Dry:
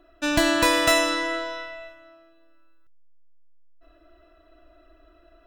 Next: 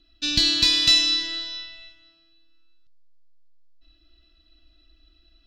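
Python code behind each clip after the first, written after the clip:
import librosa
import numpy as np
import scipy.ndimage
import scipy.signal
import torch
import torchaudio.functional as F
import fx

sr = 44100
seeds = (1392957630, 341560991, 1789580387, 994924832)

y = fx.curve_eq(x, sr, hz=(230.0, 500.0, 890.0, 1700.0, 4400.0, 10000.0), db=(0, -23, -21, -12, 14, -13))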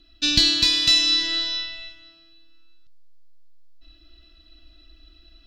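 y = fx.rider(x, sr, range_db=10, speed_s=0.5)
y = y * librosa.db_to_amplitude(2.0)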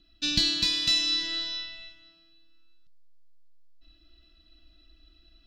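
y = fx.peak_eq(x, sr, hz=180.0, db=9.0, octaves=0.4)
y = y * librosa.db_to_amplitude(-7.0)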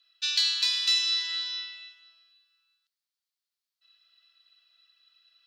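y = scipy.signal.sosfilt(scipy.signal.butter(4, 1000.0, 'highpass', fs=sr, output='sos'), x)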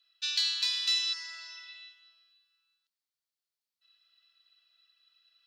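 y = fx.spec_repair(x, sr, seeds[0], start_s=1.16, length_s=0.58, low_hz=2000.0, high_hz=4300.0, source='after')
y = y * librosa.db_to_amplitude(-4.0)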